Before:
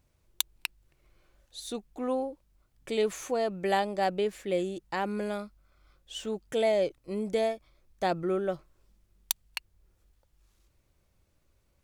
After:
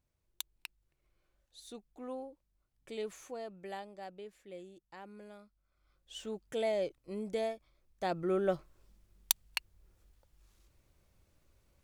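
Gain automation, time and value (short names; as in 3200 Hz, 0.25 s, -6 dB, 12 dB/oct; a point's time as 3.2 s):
3.13 s -12 dB
4.08 s -19 dB
5.39 s -19 dB
6.13 s -7 dB
8.03 s -7 dB
8.52 s +0.5 dB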